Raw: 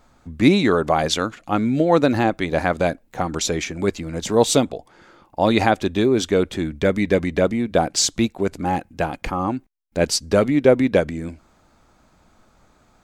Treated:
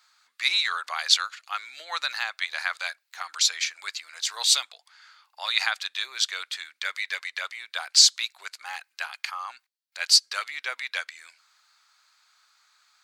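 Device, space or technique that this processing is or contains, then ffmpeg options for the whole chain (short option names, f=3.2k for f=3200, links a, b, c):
headphones lying on a table: -af "highpass=f=1.3k:w=0.5412,highpass=f=1.3k:w=1.3066,equalizer=f=4.4k:t=o:w=0.5:g=9.5,volume=-1dB"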